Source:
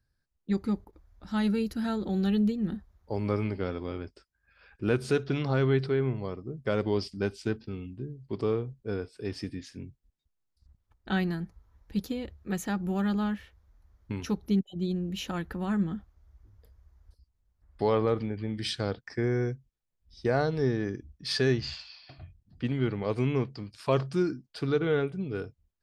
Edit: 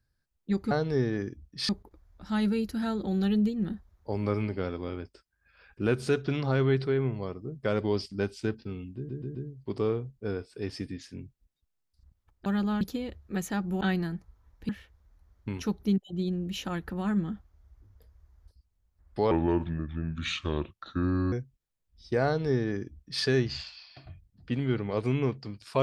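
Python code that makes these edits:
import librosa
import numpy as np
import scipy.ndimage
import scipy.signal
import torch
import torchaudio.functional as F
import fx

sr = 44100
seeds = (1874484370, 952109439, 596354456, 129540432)

y = fx.edit(x, sr, fx.stutter(start_s=7.98, slice_s=0.13, count=4),
    fx.swap(start_s=11.09, length_s=0.88, other_s=12.97, other_length_s=0.35),
    fx.speed_span(start_s=17.94, length_s=1.51, speed=0.75),
    fx.duplicate(start_s=20.38, length_s=0.98, to_s=0.71), tone=tone)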